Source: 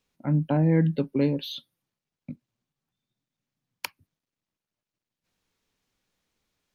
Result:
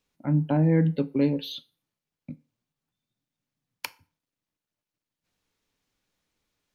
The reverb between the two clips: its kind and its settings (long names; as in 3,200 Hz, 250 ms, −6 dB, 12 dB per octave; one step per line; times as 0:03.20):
feedback delay network reverb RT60 0.39 s, low-frequency decay 0.75×, high-frequency decay 0.8×, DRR 13 dB
level −1 dB